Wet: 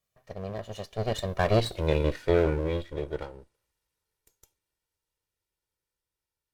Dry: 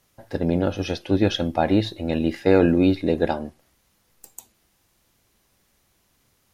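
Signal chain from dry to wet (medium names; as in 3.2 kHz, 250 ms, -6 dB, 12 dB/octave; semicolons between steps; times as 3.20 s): comb filter that takes the minimum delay 1.9 ms; Doppler pass-by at 1.78 s, 42 m/s, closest 12 m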